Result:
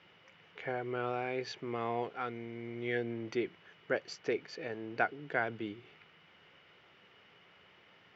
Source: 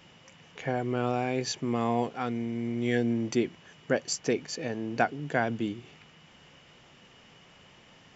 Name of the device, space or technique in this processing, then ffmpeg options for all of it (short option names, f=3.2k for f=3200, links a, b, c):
guitar cabinet: -filter_complex "[0:a]asettb=1/sr,asplit=3[a][b][c];[a]atrim=end=2.834[d];[b]atrim=start=2.83:end=3.28,asetpts=PTS-STARTPTS,afade=t=in:d=0.004:c=qsin,afade=t=out:st=0.446:d=0.004:c=qsin,lowpass=5.9k[e];[c]atrim=start=3.276[f];[d][e]acrossfade=d=0.004:c1=hsin:c2=qsin[g];[g][f]acrossfade=d=0.004:c1=qsin:c2=hsin,highpass=90,equalizer=f=140:t=q:w=4:g=-7,equalizer=f=240:t=q:w=4:g=-8,equalizer=f=410:t=q:w=4:g=4,equalizer=f=1.4k:t=q:w=4:g=6,equalizer=f=2.1k:t=q:w=4:g=5,lowpass=f=4.5k:w=0.5412,lowpass=f=4.5k:w=1.3066,volume=-7dB"